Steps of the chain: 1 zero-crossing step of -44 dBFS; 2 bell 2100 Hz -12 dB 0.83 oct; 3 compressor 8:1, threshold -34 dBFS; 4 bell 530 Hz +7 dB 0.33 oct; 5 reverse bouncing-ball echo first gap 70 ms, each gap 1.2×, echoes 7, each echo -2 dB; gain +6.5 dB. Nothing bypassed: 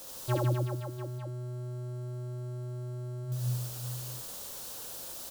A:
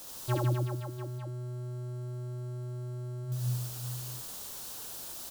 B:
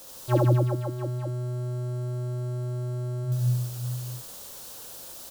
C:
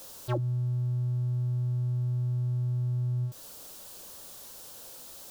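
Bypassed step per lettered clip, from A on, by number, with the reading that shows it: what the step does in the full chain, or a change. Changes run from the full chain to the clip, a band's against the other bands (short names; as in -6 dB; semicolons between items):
4, 500 Hz band -2.0 dB; 3, mean gain reduction 4.5 dB; 5, momentary loudness spread change +5 LU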